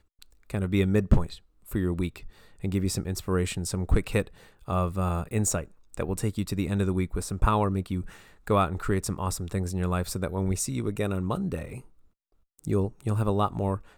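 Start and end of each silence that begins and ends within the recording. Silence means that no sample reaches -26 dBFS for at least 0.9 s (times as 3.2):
11.62–12.65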